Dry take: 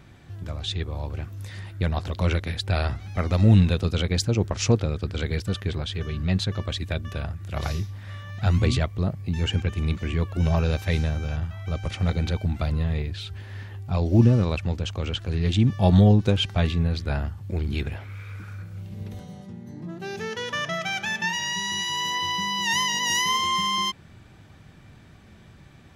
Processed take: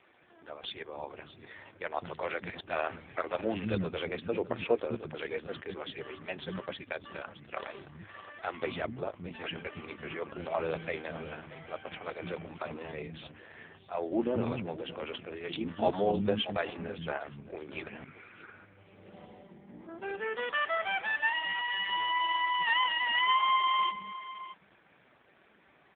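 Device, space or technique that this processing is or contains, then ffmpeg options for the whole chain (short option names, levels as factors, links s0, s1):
satellite phone: -filter_complex "[0:a]asettb=1/sr,asplit=3[s0][s1][s2];[s0]atrim=end=9.524[s3];[s1]atrim=start=9.52:end=9.94,asetpts=PTS-STARTPTS,afade=t=in:d=0.004:c=qsin,afade=t=out:st=0.416:d=0.004:c=qsin,equalizer=f=9100:t=o:w=1.2:g=4.5[s4];[s2]atrim=start=9.936[s5];[s3][s4]acrossfade=d=0.004:c1=hsin:c2=qsin[s6];[s6][s5]acrossfade=d=0.004:c1=qsin:c2=hsin,highpass=350,lowpass=3300,acrossover=split=250[s7][s8];[s7]adelay=210[s9];[s9][s8]amix=inputs=2:normalize=0,aecho=1:1:620:0.178" -ar 8000 -c:a libopencore_amrnb -b:a 4750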